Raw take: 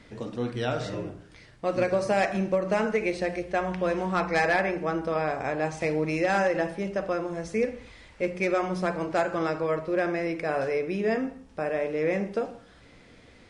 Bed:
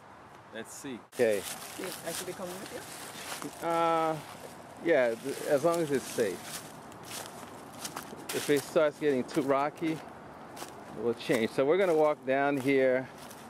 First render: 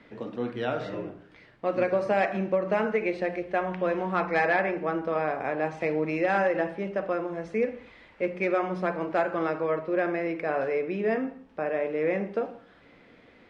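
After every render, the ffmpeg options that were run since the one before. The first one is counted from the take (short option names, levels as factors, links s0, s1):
-filter_complex "[0:a]acrossover=split=160 3500:gain=0.251 1 0.112[s0][s1][s2];[s0][s1][s2]amix=inputs=3:normalize=0"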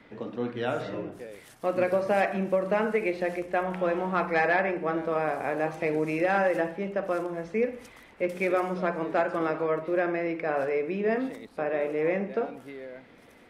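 -filter_complex "[1:a]volume=0.158[s0];[0:a][s0]amix=inputs=2:normalize=0"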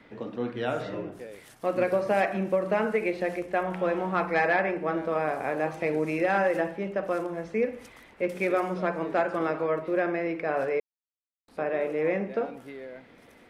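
-filter_complex "[0:a]asplit=3[s0][s1][s2];[s0]atrim=end=10.8,asetpts=PTS-STARTPTS,afade=t=out:st=10.796:d=0.004:c=hsin[s3];[s1]atrim=start=10.8:end=11.48,asetpts=PTS-STARTPTS,volume=0[s4];[s2]atrim=start=11.48,asetpts=PTS-STARTPTS,afade=t=in:d=0.004:c=hsin[s5];[s3][s4][s5]concat=n=3:v=0:a=1"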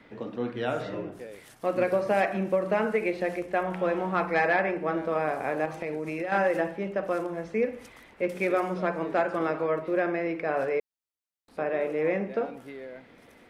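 -filter_complex "[0:a]asettb=1/sr,asplit=3[s0][s1][s2];[s0]atrim=end=5.654[s3];[s1]atrim=start=5.65:end=6.32,asetpts=PTS-STARTPTS,afade=t=in:d=0.004:c=qsin,afade=t=out:st=0.666:d=0.004:c=qsin,acompressor=threshold=0.0398:ratio=6:attack=3.2:release=140:knee=1:detection=peak[s4];[s2]atrim=start=6.316[s5];[s3][s4]acrossfade=d=0.004:c1=hsin:c2=qsin[s6];[s6][s5]acrossfade=d=0.004:c1=qsin:c2=hsin"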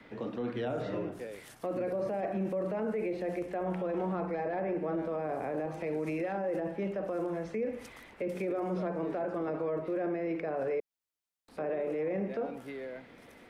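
-filter_complex "[0:a]acrossover=split=280|730[s0][s1][s2];[s2]acompressor=threshold=0.00794:ratio=6[s3];[s0][s1][s3]amix=inputs=3:normalize=0,alimiter=level_in=1.26:limit=0.0631:level=0:latency=1:release=12,volume=0.794"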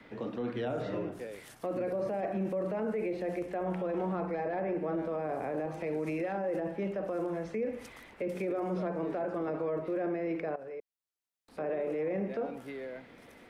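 -filter_complex "[0:a]asplit=2[s0][s1];[s0]atrim=end=10.56,asetpts=PTS-STARTPTS,afade=t=out:st=10.556:d=0.004:c=hsin:silence=0.199526[s2];[s1]atrim=start=10.56,asetpts=PTS-STARTPTS,afade=t=in:d=1.12:silence=0.199526[s3];[s2][s3]concat=n=2:v=0:a=1"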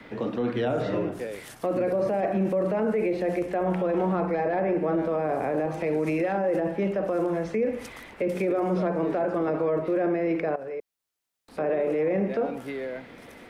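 -af "volume=2.51"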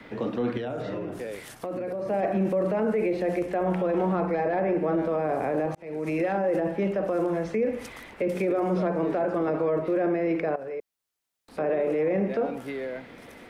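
-filter_complex "[0:a]asettb=1/sr,asplit=3[s0][s1][s2];[s0]atrim=end=0.574[s3];[s1]atrim=start=0.57:end=2.1,asetpts=PTS-STARTPTS,afade=t=in:d=0.004:c=qsin,afade=t=out:st=1.526:d=0.004:c=qsin,acompressor=threshold=0.0355:ratio=4:attack=3.2:release=140:knee=1:detection=peak[s4];[s2]atrim=start=2.096[s5];[s3][s4]acrossfade=d=0.004:c1=hsin:c2=qsin[s6];[s6][s5]acrossfade=d=0.004:c1=qsin:c2=hsin,asplit=2[s7][s8];[s7]atrim=end=5.75,asetpts=PTS-STARTPTS,afade=t=out:st=5.746:d=0.004:c=hsin[s9];[s8]atrim=start=5.75,asetpts=PTS-STARTPTS,afade=t=in:d=0.46[s10];[s9][s10]concat=n=2:v=0:a=1"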